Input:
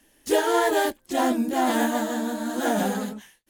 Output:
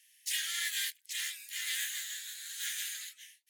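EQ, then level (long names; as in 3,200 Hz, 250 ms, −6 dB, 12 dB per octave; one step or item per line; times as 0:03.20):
elliptic high-pass filter 2,000 Hz, stop band 60 dB
0.0 dB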